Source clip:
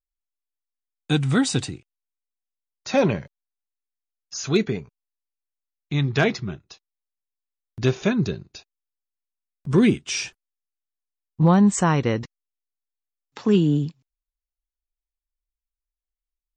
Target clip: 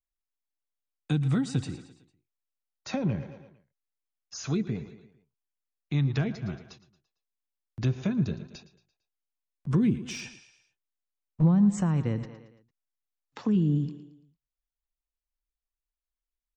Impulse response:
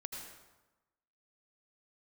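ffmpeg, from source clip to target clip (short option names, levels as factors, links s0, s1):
-filter_complex "[0:a]highshelf=f=7600:g=-8,asplit=2[s0][s1];[s1]aecho=0:1:113|226|339|452:0.141|0.0664|0.0312|0.0147[s2];[s0][s2]amix=inputs=2:normalize=0,asplit=3[s3][s4][s5];[s3]afade=t=out:st=10.09:d=0.02[s6];[s4]aeval=exprs='clip(val(0),-1,0.0794)':c=same,afade=t=in:st=10.09:d=0.02,afade=t=out:st=11.41:d=0.02[s7];[s5]afade=t=in:st=11.41:d=0.02[s8];[s6][s7][s8]amix=inputs=3:normalize=0,acrossover=split=240[s9][s10];[s10]acompressor=threshold=0.0316:ratio=16[s11];[s9][s11]amix=inputs=2:normalize=0,equalizer=f=4000:t=o:w=2.2:g=-2.5,bandreject=f=400:w=12,volume=0.75"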